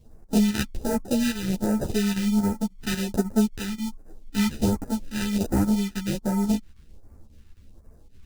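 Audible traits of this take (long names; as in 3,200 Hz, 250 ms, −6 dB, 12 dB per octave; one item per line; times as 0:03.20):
aliases and images of a low sample rate 1,100 Hz, jitter 0%
phaser sweep stages 2, 1.3 Hz, lowest notch 550–3,100 Hz
chopped level 3.7 Hz, depth 60%, duty 85%
a shimmering, thickened sound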